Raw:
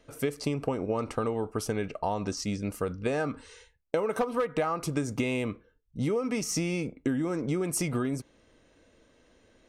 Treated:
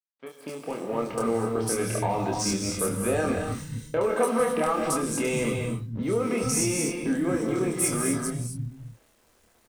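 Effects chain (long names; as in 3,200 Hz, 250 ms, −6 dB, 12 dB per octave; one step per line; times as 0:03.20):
fade in at the beginning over 2.30 s
noise gate with hold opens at −56 dBFS
parametric band 9,700 Hz +12 dB 0.59 octaves
leveller curve on the samples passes 2
brickwall limiter −20 dBFS, peak gain reduction 10 dB
bit reduction 10 bits
double-tracking delay 26 ms −4 dB
three-band delay without the direct sound mids, highs, lows 70/460 ms, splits 170/3,600 Hz
reverb whose tail is shaped and stops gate 280 ms rising, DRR 3 dB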